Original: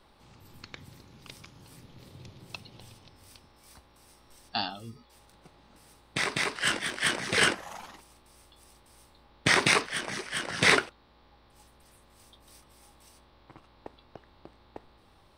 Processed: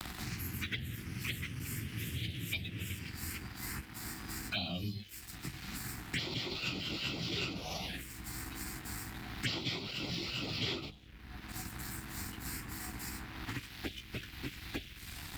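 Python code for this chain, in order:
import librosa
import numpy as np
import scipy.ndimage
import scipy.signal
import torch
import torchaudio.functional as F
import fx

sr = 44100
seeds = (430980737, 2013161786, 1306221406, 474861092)

p1 = fx.pitch_bins(x, sr, semitones=-2.0)
p2 = scipy.signal.sosfilt(scipy.signal.butter(2, 43.0, 'highpass', fs=sr, output='sos'), p1)
p3 = fx.peak_eq(p2, sr, hz=230.0, db=-4.5, octaves=0.32)
p4 = fx.hum_notches(p3, sr, base_hz=50, count=4)
p5 = fx.over_compress(p4, sr, threshold_db=-45.0, ratio=-1.0)
p6 = p4 + (p5 * librosa.db_to_amplitude(3.0))
p7 = fx.env_phaser(p6, sr, low_hz=440.0, high_hz=1700.0, full_db=-29.0)
p8 = np.sign(p7) * np.maximum(np.abs(p7) - 10.0 ** (-56.5 / 20.0), 0.0)
p9 = fx.graphic_eq_10(p8, sr, hz=(500, 1000, 8000), db=(-9, -12, -7))
p10 = fx.band_squash(p9, sr, depth_pct=100)
y = p10 * librosa.db_to_amplitude(2.5)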